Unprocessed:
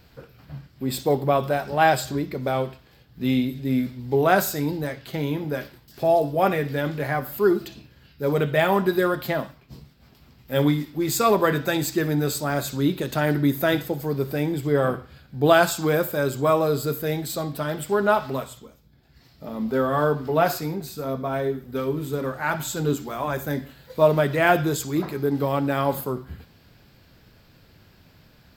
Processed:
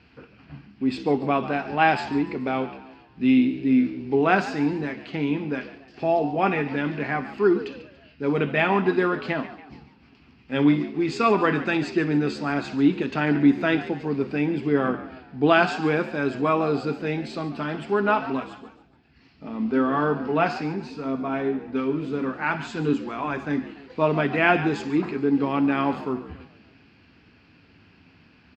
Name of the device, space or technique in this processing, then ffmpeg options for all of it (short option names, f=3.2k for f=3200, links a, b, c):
frequency-shifting delay pedal into a guitar cabinet: -filter_complex "[0:a]asplit=5[a][b][c][d][e];[b]adelay=142,afreqshift=66,volume=-15dB[f];[c]adelay=284,afreqshift=132,volume=-22.3dB[g];[d]adelay=426,afreqshift=198,volume=-29.7dB[h];[e]adelay=568,afreqshift=264,volume=-37dB[i];[a][f][g][h][i]amix=inputs=5:normalize=0,highpass=80,equalizer=f=130:t=q:w=4:g=-8,equalizer=f=270:t=q:w=4:g=6,equalizer=f=570:t=q:w=4:g=-9,equalizer=f=2.6k:t=q:w=4:g=8,equalizer=f=3.7k:t=q:w=4:g=-8,lowpass=f=4.6k:w=0.5412,lowpass=f=4.6k:w=1.3066"